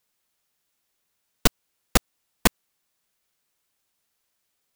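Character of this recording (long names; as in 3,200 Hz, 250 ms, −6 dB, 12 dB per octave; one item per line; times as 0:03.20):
background noise floor −76 dBFS
spectral slope −3.0 dB per octave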